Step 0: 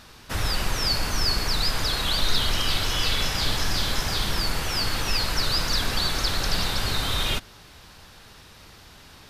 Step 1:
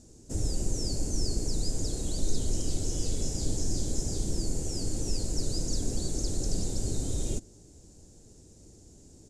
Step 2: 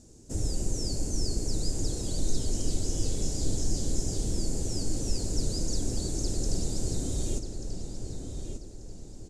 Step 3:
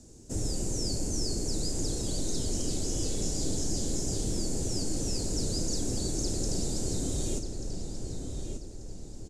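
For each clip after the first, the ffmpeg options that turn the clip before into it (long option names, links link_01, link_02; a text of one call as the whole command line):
ffmpeg -i in.wav -af "firequalizer=gain_entry='entry(200,0);entry(310,5);entry(1100,-27);entry(2400,-25);entry(3500,-23);entry(7100,7);entry(14000,-24)':delay=0.05:min_phase=1,volume=-2.5dB" out.wav
ffmpeg -i in.wav -filter_complex "[0:a]asplit=2[link_01][link_02];[link_02]adelay=1186,lowpass=frequency=4600:poles=1,volume=-6.5dB,asplit=2[link_03][link_04];[link_04]adelay=1186,lowpass=frequency=4600:poles=1,volume=0.41,asplit=2[link_05][link_06];[link_06]adelay=1186,lowpass=frequency=4600:poles=1,volume=0.41,asplit=2[link_07][link_08];[link_08]adelay=1186,lowpass=frequency=4600:poles=1,volume=0.41,asplit=2[link_09][link_10];[link_10]adelay=1186,lowpass=frequency=4600:poles=1,volume=0.41[link_11];[link_01][link_03][link_05][link_07][link_09][link_11]amix=inputs=6:normalize=0" out.wav
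ffmpeg -i in.wav -filter_complex "[0:a]acrossover=split=130|770[link_01][link_02][link_03];[link_01]asoftclip=type=tanh:threshold=-29.5dB[link_04];[link_03]asplit=2[link_05][link_06];[link_06]adelay=34,volume=-11dB[link_07];[link_05][link_07]amix=inputs=2:normalize=0[link_08];[link_04][link_02][link_08]amix=inputs=3:normalize=0,volume=1.5dB" out.wav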